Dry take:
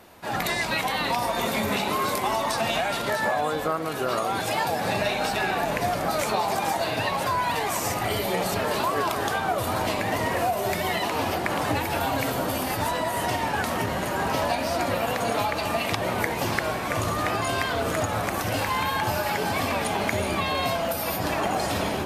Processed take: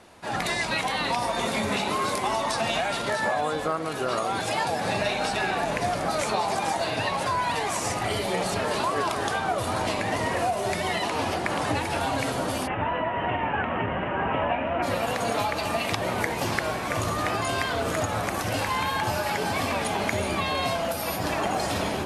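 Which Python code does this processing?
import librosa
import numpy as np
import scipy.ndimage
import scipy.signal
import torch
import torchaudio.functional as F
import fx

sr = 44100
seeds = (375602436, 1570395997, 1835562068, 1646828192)

y = fx.ellip_lowpass(x, sr, hz=fx.steps((0.0, 11000.0), (12.66, 2900.0), (14.82, 12000.0)), order=4, stop_db=40)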